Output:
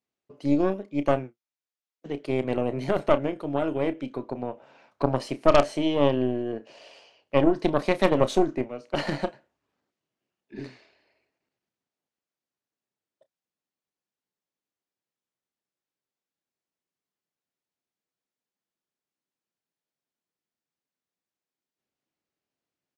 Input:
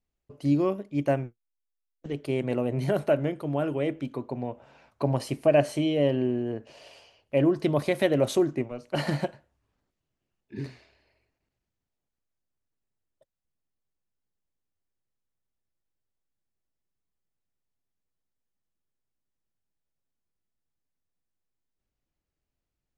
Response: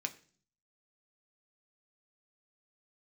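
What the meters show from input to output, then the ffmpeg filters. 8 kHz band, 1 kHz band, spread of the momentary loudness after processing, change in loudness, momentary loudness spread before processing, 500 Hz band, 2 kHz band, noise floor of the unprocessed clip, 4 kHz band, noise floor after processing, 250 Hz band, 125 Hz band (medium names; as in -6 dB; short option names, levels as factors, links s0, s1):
-1.5 dB, +6.5 dB, 15 LU, +1.5 dB, 14 LU, +1.5 dB, +2.0 dB, -85 dBFS, +2.5 dB, under -85 dBFS, +1.0 dB, -3.0 dB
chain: -filter_complex "[0:a]highpass=210,lowpass=6900,aeval=exprs='0.335*(cos(1*acos(clip(val(0)/0.335,-1,1)))-cos(1*PI/2))+0.15*(cos(4*acos(clip(val(0)/0.335,-1,1)))-cos(4*PI/2))+0.0668*(cos(6*acos(clip(val(0)/0.335,-1,1)))-cos(6*PI/2))+0.0168*(cos(8*acos(clip(val(0)/0.335,-1,1)))-cos(8*PI/2))':c=same,asplit=2[s0][s1];[s1]adelay=31,volume=0.2[s2];[s0][s2]amix=inputs=2:normalize=0,volume=1.12"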